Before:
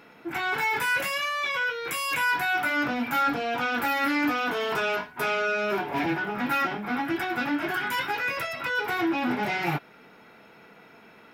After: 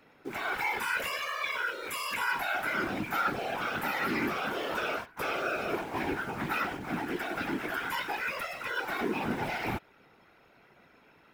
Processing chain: in parallel at -8.5 dB: bit crusher 6-bit; on the sum: whisper effect; trim -8.5 dB

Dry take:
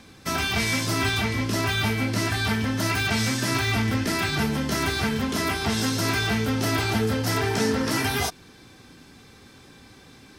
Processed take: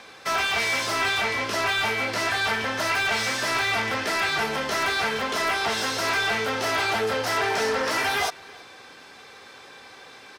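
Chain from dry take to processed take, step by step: overdrive pedal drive 19 dB, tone 2.8 kHz, clips at -10.5 dBFS; resonant low shelf 370 Hz -7 dB, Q 1.5; echo from a far wall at 55 m, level -23 dB; trim -4 dB

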